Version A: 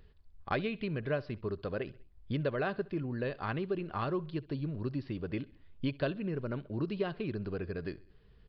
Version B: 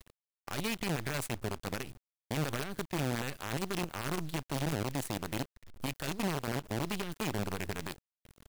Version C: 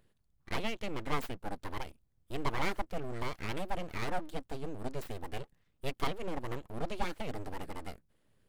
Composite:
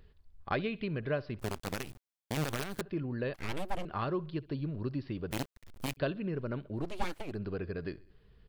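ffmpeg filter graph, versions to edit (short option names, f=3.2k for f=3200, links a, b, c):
-filter_complex "[1:a]asplit=2[a][b];[2:a]asplit=2[c][d];[0:a]asplit=5[e][f][g][h][i];[e]atrim=end=1.392[j];[a]atrim=start=1.388:end=2.812[k];[f]atrim=start=2.808:end=3.342[l];[c]atrim=start=3.338:end=3.852[m];[g]atrim=start=3.848:end=5.312[n];[b]atrim=start=5.308:end=5.972[o];[h]atrim=start=5.968:end=6.98[p];[d]atrim=start=6.74:end=7.39[q];[i]atrim=start=7.15[r];[j][k]acrossfade=d=0.004:c1=hsin:c2=hsin[s];[s][l]acrossfade=d=0.004:c1=hsin:c2=hsin[t];[t][m]acrossfade=d=0.004:c1=hsin:c2=hsin[u];[u][n]acrossfade=d=0.004:c1=hsin:c2=hsin[v];[v][o]acrossfade=d=0.004:c1=hsin:c2=hsin[w];[w][p]acrossfade=d=0.004:c1=hsin:c2=hsin[x];[x][q]acrossfade=d=0.24:c1=tri:c2=tri[y];[y][r]acrossfade=d=0.24:c1=tri:c2=tri"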